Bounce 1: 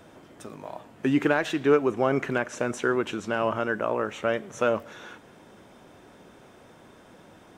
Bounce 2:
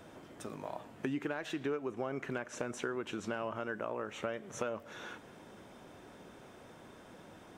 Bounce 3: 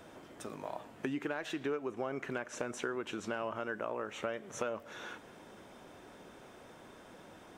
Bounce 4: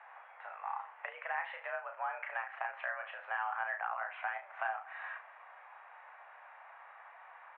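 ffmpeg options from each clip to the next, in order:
ffmpeg -i in.wav -af "acompressor=threshold=-32dB:ratio=5,volume=-2.5dB" out.wav
ffmpeg -i in.wav -af "equalizer=frequency=120:width_type=o:width=2.2:gain=-4,volume=1dB" out.wav
ffmpeg -i in.wav -af "aecho=1:1:34|73:0.531|0.188,highpass=frequency=590:width_type=q:width=0.5412,highpass=frequency=590:width_type=q:width=1.307,lowpass=frequency=2200:width_type=q:width=0.5176,lowpass=frequency=2200:width_type=q:width=0.7071,lowpass=frequency=2200:width_type=q:width=1.932,afreqshift=190,volume=2.5dB" out.wav

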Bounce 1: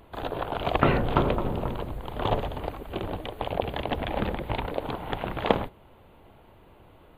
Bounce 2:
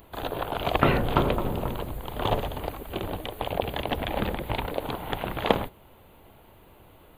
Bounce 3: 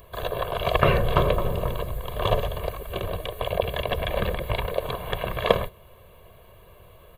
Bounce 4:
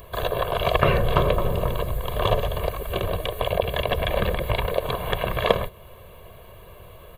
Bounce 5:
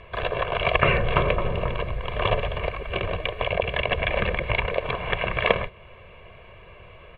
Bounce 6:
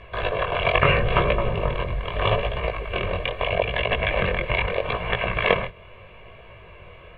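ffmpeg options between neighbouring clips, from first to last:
ffmpeg -i in.wav -af "aemphasis=mode=production:type=50kf" out.wav
ffmpeg -i in.wav -af "aecho=1:1:1.8:0.85" out.wav
ffmpeg -i in.wav -af "acompressor=threshold=-29dB:ratio=1.5,volume=5.5dB" out.wav
ffmpeg -i in.wav -af "lowpass=frequency=2400:width_type=q:width=3.4,volume=-2.5dB" out.wav
ffmpeg -i in.wav -af "flanger=delay=17:depth=6.2:speed=0.78,volume=4.5dB" out.wav

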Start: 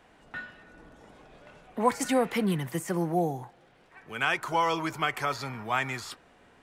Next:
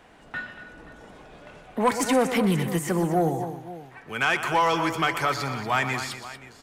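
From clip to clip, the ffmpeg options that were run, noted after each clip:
ffmpeg -i in.wav -filter_complex "[0:a]asplit=2[link_01][link_02];[link_02]aecho=0:1:122|235|527:0.224|0.251|0.126[link_03];[link_01][link_03]amix=inputs=2:normalize=0,asoftclip=type=tanh:threshold=-18.5dB,volume=5.5dB" out.wav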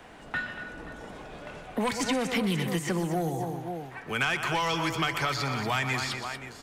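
ffmpeg -i in.wav -filter_complex "[0:a]acrossover=split=170|2400|5900[link_01][link_02][link_03][link_04];[link_01]acompressor=threshold=-39dB:ratio=4[link_05];[link_02]acompressor=threshold=-34dB:ratio=4[link_06];[link_03]acompressor=threshold=-35dB:ratio=4[link_07];[link_04]acompressor=threshold=-52dB:ratio=4[link_08];[link_05][link_06][link_07][link_08]amix=inputs=4:normalize=0,volume=4dB" out.wav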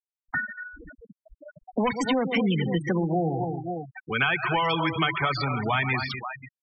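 ffmpeg -i in.wav -af "afftfilt=real='re*gte(hypot(re,im),0.0501)':imag='im*gte(hypot(re,im),0.0501)':win_size=1024:overlap=0.75,volume=4dB" out.wav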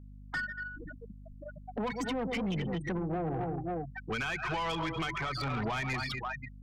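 ffmpeg -i in.wav -af "alimiter=limit=-20.5dB:level=0:latency=1:release=430,aeval=exprs='(tanh(28.2*val(0)+0.1)-tanh(0.1))/28.2':channel_layout=same,aeval=exprs='val(0)+0.00398*(sin(2*PI*50*n/s)+sin(2*PI*2*50*n/s)/2+sin(2*PI*3*50*n/s)/3+sin(2*PI*4*50*n/s)/4+sin(2*PI*5*50*n/s)/5)':channel_layout=same" out.wav

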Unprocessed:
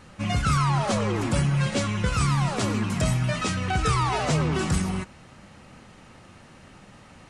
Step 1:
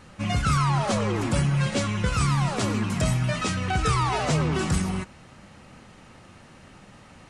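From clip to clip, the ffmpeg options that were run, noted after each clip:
ffmpeg -i in.wav -af anull out.wav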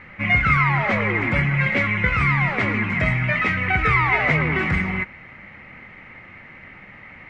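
ffmpeg -i in.wav -af "lowpass=frequency=2100:width_type=q:width=11,volume=1dB" out.wav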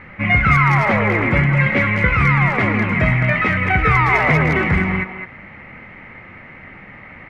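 ffmpeg -i in.wav -filter_complex "[0:a]highshelf=frequency=2600:gain=-8.5,asplit=2[link_01][link_02];[link_02]adelay=210,highpass=300,lowpass=3400,asoftclip=type=hard:threshold=-16.5dB,volume=-7dB[link_03];[link_01][link_03]amix=inputs=2:normalize=0,volume=5.5dB" out.wav

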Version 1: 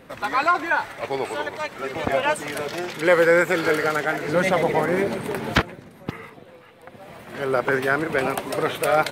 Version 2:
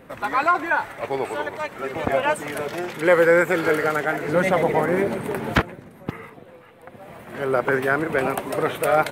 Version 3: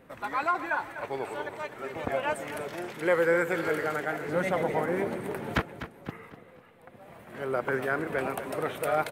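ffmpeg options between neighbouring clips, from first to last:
ffmpeg -i in.wav -af "equalizer=frequency=4700:width_type=o:width=1.4:gain=-7.5,volume=1dB" out.wav
ffmpeg -i in.wav -af "aecho=1:1:249|498|747|996:0.251|0.0955|0.0363|0.0138,volume=-8.5dB" out.wav

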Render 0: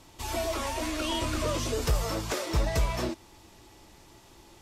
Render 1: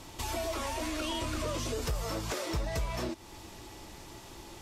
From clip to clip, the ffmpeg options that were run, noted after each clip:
ffmpeg -i in.wav -filter_complex "[0:a]asplit=2[link_01][link_02];[link_02]alimiter=level_in=4dB:limit=-24dB:level=0:latency=1:release=141,volume=-4dB,volume=0dB[link_03];[link_01][link_03]amix=inputs=2:normalize=0,acompressor=threshold=-37dB:ratio=2" out.wav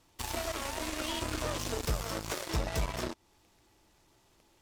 ffmpeg -i in.wav -af "aeval=exprs='0.0891*(cos(1*acos(clip(val(0)/0.0891,-1,1)))-cos(1*PI/2))+0.00708*(cos(5*acos(clip(val(0)/0.0891,-1,1)))-cos(5*PI/2))+0.02*(cos(7*acos(clip(val(0)/0.0891,-1,1)))-cos(7*PI/2))':channel_layout=same" out.wav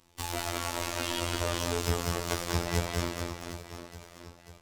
ffmpeg -i in.wav -af "aecho=1:1:190|437|758.1|1176|1718:0.631|0.398|0.251|0.158|0.1,afftfilt=real='hypot(re,im)*cos(PI*b)':imag='0':win_size=2048:overlap=0.75,volume=5dB" out.wav

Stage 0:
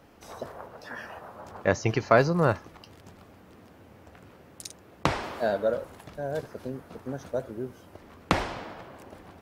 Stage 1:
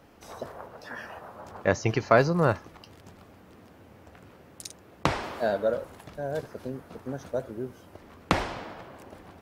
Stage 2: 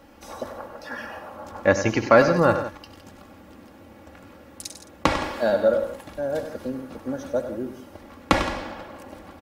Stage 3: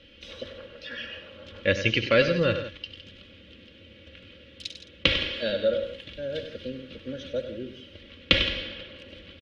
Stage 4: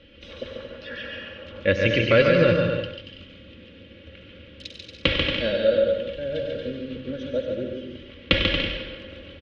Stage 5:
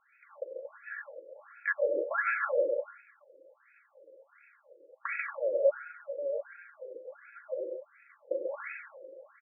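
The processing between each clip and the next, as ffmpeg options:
ffmpeg -i in.wav -af anull out.wav
ffmpeg -i in.wav -filter_complex "[0:a]aecho=1:1:3.6:0.57,asplit=2[link_01][link_02];[link_02]aecho=0:1:68|98|167:0.133|0.299|0.211[link_03];[link_01][link_03]amix=inputs=2:normalize=0,volume=3.5dB" out.wav
ffmpeg -i in.wav -af "firequalizer=gain_entry='entry(100,0);entry(280,-7);entry(530,-1);entry(750,-25);entry(1500,-5);entry(3100,15);entry(4800,-1);entry(7700,-18);entry(12000,-26)':delay=0.05:min_phase=1,volume=-1dB" out.wav
ffmpeg -i in.wav -filter_complex "[0:a]lowpass=frequency=2100:poles=1,asplit=2[link_01][link_02];[link_02]aecho=0:1:140|231|290.2|328.6|353.6:0.631|0.398|0.251|0.158|0.1[link_03];[link_01][link_03]amix=inputs=2:normalize=0,volume=3.5dB" out.wav
ffmpeg -i in.wav -filter_complex "[0:a]aeval=exprs='0.398*(abs(mod(val(0)/0.398+3,4)-2)-1)':channel_layout=same,acrossover=split=450 2200:gain=0.1 1 0.141[link_01][link_02][link_03];[link_01][link_02][link_03]amix=inputs=3:normalize=0,afftfilt=real='re*between(b*sr/1024,420*pow(1900/420,0.5+0.5*sin(2*PI*1.4*pts/sr))/1.41,420*pow(1900/420,0.5+0.5*sin(2*PI*1.4*pts/sr))*1.41)':imag='im*between(b*sr/1024,420*pow(1900/420,0.5+0.5*sin(2*PI*1.4*pts/sr))/1.41,420*pow(1900/420,0.5+0.5*sin(2*PI*1.4*pts/sr))*1.41)':win_size=1024:overlap=0.75" out.wav

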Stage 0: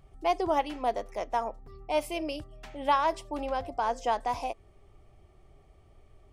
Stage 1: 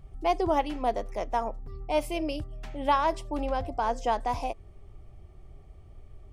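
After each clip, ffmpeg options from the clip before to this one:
ffmpeg -i in.wav -af "lowshelf=frequency=230:gain=10" out.wav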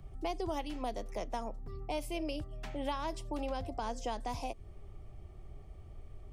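ffmpeg -i in.wav -filter_complex "[0:a]acrossover=split=100|330|3000[link_01][link_02][link_03][link_04];[link_01]acompressor=threshold=-42dB:ratio=4[link_05];[link_02]acompressor=threshold=-44dB:ratio=4[link_06];[link_03]acompressor=threshold=-39dB:ratio=4[link_07];[link_04]acompressor=threshold=-47dB:ratio=4[link_08];[link_05][link_06][link_07][link_08]amix=inputs=4:normalize=0" out.wav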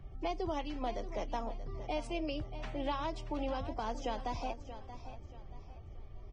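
ffmpeg -i in.wav -filter_complex "[0:a]aecho=1:1:631|1262|1893|2524:0.237|0.083|0.029|0.0102,acrossover=split=5900[link_01][link_02];[link_02]acrusher=bits=6:mix=0:aa=0.000001[link_03];[link_01][link_03]amix=inputs=2:normalize=0" -ar 22050 -c:a libvorbis -b:a 16k out.ogg

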